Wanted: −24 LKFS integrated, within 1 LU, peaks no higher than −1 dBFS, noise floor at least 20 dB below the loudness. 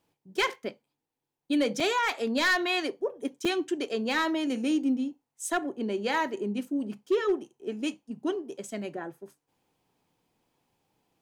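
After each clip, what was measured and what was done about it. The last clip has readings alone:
share of clipped samples 0.3%; peaks flattened at −19.0 dBFS; number of dropouts 2; longest dropout 4.0 ms; integrated loudness −29.5 LKFS; sample peak −19.0 dBFS; target loudness −24.0 LKFS
→ clipped peaks rebuilt −19 dBFS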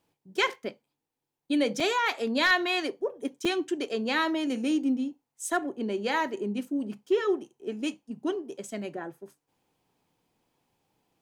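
share of clipped samples 0.0%; number of dropouts 2; longest dropout 4.0 ms
→ repair the gap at 0:01.80/0:03.45, 4 ms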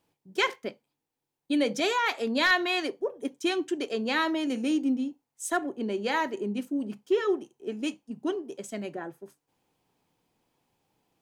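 number of dropouts 0; integrated loudness −29.0 LKFS; sample peak −10.0 dBFS; target loudness −24.0 LKFS
→ level +5 dB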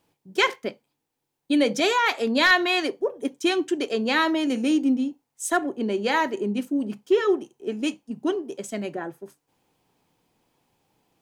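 integrated loudness −24.0 LKFS; sample peak −5.0 dBFS; background noise floor −80 dBFS

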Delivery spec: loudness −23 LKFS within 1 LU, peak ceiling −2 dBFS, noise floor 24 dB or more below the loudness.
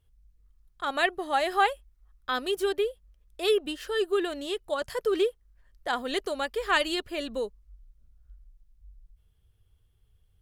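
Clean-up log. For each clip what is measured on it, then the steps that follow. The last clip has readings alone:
integrated loudness −29.0 LKFS; sample peak −9.5 dBFS; target loudness −23.0 LKFS
→ level +6 dB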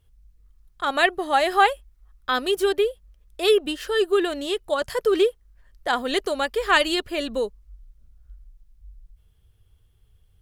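integrated loudness −23.0 LKFS; sample peak −3.5 dBFS; background noise floor −60 dBFS

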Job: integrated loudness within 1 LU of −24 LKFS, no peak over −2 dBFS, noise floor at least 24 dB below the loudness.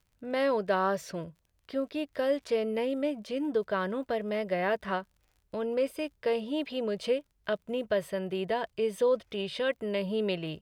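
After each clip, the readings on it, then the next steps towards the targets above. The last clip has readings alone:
crackle rate 40 per second; integrated loudness −31.5 LKFS; sample peak −16.5 dBFS; target loudness −24.0 LKFS
→ click removal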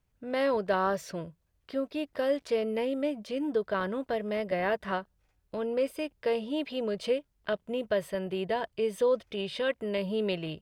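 crackle rate 0.38 per second; integrated loudness −31.5 LKFS; sample peak −16.0 dBFS; target loudness −24.0 LKFS
→ level +7.5 dB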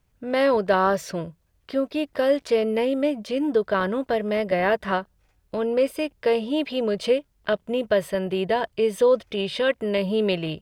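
integrated loudness −24.0 LKFS; sample peak −8.5 dBFS; background noise floor −66 dBFS

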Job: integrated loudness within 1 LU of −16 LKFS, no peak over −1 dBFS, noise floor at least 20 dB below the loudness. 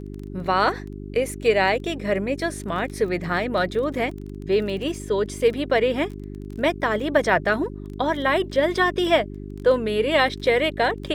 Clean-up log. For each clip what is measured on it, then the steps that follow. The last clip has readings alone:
crackle rate 20 per second; mains hum 50 Hz; hum harmonics up to 400 Hz; level of the hum −32 dBFS; integrated loudness −22.5 LKFS; sample peak −5.0 dBFS; target loudness −16.0 LKFS
→ click removal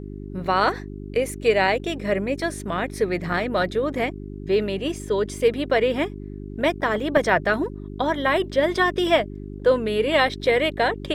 crackle rate 0.99 per second; mains hum 50 Hz; hum harmonics up to 400 Hz; level of the hum −32 dBFS
→ hum removal 50 Hz, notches 8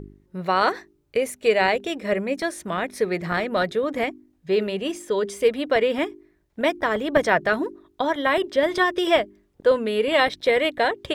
mains hum none found; integrated loudness −23.0 LKFS; sample peak −5.0 dBFS; target loudness −16.0 LKFS
→ level +7 dB
brickwall limiter −1 dBFS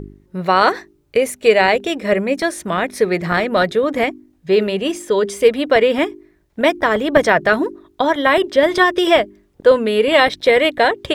integrated loudness −16.0 LKFS; sample peak −1.0 dBFS; background noise floor −58 dBFS

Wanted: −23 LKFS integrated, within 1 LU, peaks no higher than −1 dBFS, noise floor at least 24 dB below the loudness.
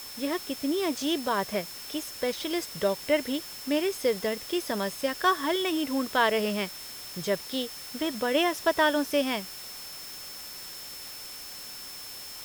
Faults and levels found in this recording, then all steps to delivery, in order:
interfering tone 5,300 Hz; level of the tone −43 dBFS; background noise floor −42 dBFS; target noise floor −54 dBFS; integrated loudness −29.5 LKFS; sample peak −10.5 dBFS; target loudness −23.0 LKFS
→ notch filter 5,300 Hz, Q 30
broadband denoise 12 dB, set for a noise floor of −42 dBFS
level +6.5 dB

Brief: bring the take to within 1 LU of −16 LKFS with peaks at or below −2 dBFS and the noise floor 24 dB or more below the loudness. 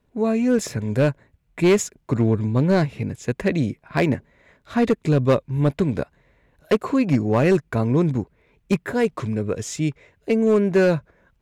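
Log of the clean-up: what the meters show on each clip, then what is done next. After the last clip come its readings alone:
share of clipped samples 1.1%; peaks flattened at −11.0 dBFS; integrated loudness −21.5 LKFS; sample peak −11.0 dBFS; target loudness −16.0 LKFS
→ clipped peaks rebuilt −11 dBFS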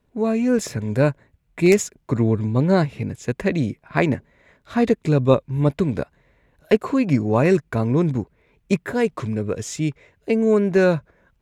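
share of clipped samples 0.0%; integrated loudness −21.0 LKFS; sample peak −2.5 dBFS; target loudness −16.0 LKFS
→ level +5 dB
brickwall limiter −2 dBFS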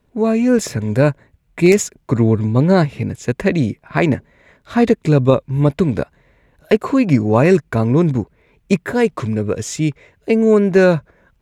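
integrated loudness −16.5 LKFS; sample peak −2.0 dBFS; background noise floor −60 dBFS

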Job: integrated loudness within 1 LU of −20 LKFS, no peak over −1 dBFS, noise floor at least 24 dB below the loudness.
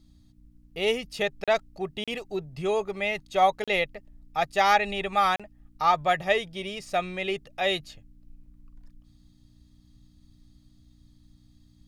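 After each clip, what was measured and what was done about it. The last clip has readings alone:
number of dropouts 4; longest dropout 36 ms; mains hum 60 Hz; hum harmonics up to 300 Hz; level of the hum −60 dBFS; integrated loudness −27.0 LKFS; sample peak −8.5 dBFS; target loudness −20.0 LKFS
→ repair the gap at 0:01.44/0:02.04/0:03.64/0:05.36, 36 ms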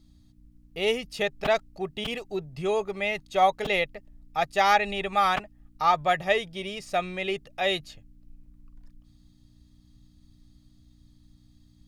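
number of dropouts 0; mains hum 60 Hz; hum harmonics up to 300 Hz; level of the hum −60 dBFS
→ hum removal 60 Hz, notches 5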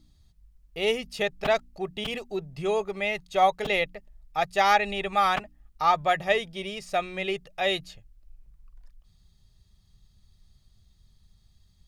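mains hum none found; integrated loudness −26.5 LKFS; sample peak −8.5 dBFS; target loudness −20.0 LKFS
→ level +6.5 dB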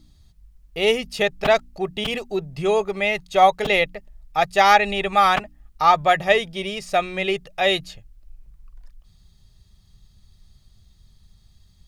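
integrated loudness −20.0 LKFS; sample peak −2.0 dBFS; background noise floor −55 dBFS

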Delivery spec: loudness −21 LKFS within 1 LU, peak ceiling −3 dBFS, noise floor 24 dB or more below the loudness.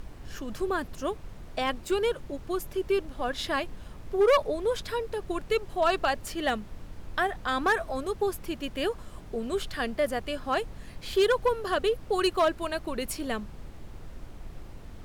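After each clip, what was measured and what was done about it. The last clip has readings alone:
share of clipped samples 0.4%; peaks flattened at −17.0 dBFS; background noise floor −45 dBFS; target noise floor −54 dBFS; integrated loudness −29.5 LKFS; sample peak −17.0 dBFS; target loudness −21.0 LKFS
→ clipped peaks rebuilt −17 dBFS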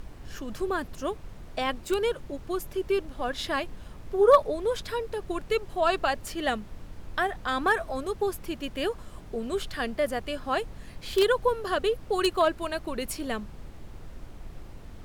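share of clipped samples 0.0%; background noise floor −45 dBFS; target noise floor −53 dBFS
→ noise reduction from a noise print 8 dB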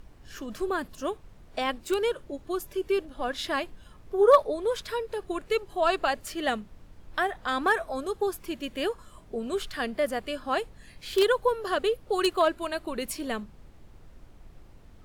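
background noise floor −52 dBFS; target noise floor −53 dBFS
→ noise reduction from a noise print 6 dB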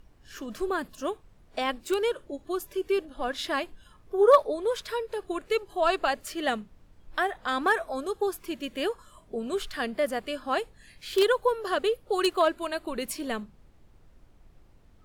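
background noise floor −58 dBFS; integrated loudness −28.5 LKFS; sample peak −7.5 dBFS; target loudness −21.0 LKFS
→ level +7.5 dB
brickwall limiter −3 dBFS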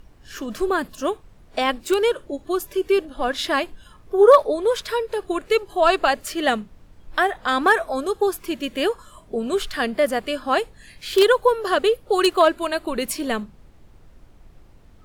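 integrated loudness −21.5 LKFS; sample peak −3.0 dBFS; background noise floor −50 dBFS

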